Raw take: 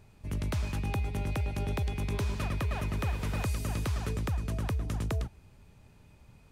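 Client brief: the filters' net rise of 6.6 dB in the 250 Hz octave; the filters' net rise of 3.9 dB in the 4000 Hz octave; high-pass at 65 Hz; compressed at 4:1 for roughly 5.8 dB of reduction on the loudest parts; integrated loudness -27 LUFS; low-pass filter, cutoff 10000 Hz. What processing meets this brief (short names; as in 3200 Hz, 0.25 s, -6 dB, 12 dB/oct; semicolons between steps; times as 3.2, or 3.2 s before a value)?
HPF 65 Hz; LPF 10000 Hz; bell 250 Hz +9 dB; bell 4000 Hz +5 dB; compressor 4:1, threshold -33 dBFS; gain +10.5 dB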